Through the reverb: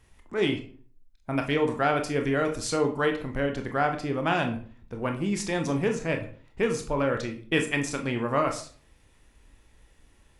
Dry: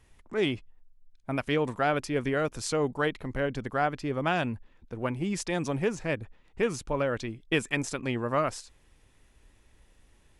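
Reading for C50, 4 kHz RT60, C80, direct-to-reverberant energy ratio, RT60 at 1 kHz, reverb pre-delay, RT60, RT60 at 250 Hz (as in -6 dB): 10.5 dB, 0.35 s, 15.0 dB, 4.0 dB, 0.40 s, 21 ms, 0.45 s, 0.55 s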